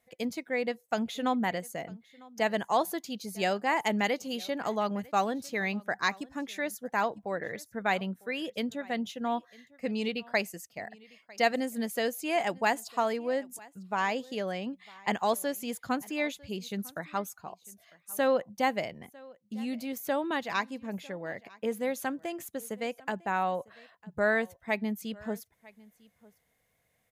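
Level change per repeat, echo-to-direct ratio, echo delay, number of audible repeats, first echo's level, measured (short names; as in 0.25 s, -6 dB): no steady repeat, -23.5 dB, 0.951 s, 1, -23.5 dB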